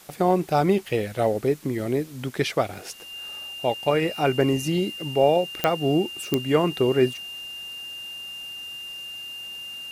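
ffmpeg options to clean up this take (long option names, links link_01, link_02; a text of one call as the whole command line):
ffmpeg -i in.wav -af "adeclick=threshold=4,bandreject=frequency=2800:width=30,afwtdn=0.0035" out.wav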